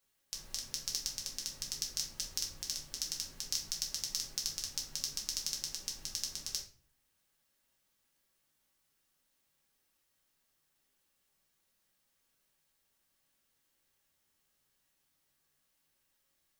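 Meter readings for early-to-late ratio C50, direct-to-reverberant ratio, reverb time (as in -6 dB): 8.5 dB, -2.0 dB, 0.40 s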